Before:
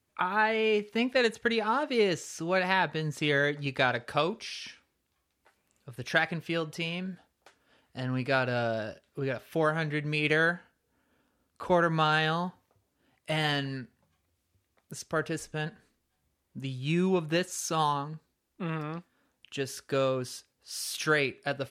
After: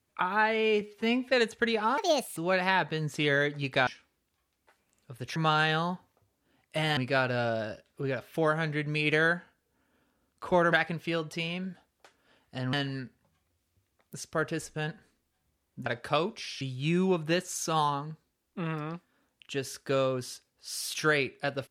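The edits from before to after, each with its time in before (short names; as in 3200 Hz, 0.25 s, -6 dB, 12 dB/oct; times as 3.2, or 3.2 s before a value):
0.81–1.14 stretch 1.5×
1.81–2.4 speed 149%
3.9–4.65 move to 16.64
6.14–8.15 swap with 11.9–13.51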